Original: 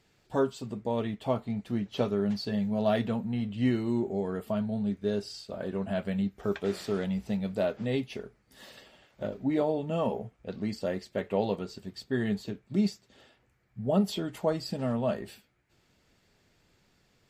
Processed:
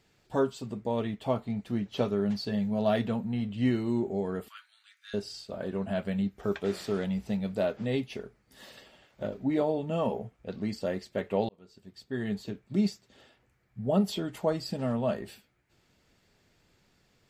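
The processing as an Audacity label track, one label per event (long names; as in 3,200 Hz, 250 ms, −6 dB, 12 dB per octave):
4.480000	5.140000	Butterworth high-pass 1,300 Hz 48 dB per octave
11.490000	12.580000	fade in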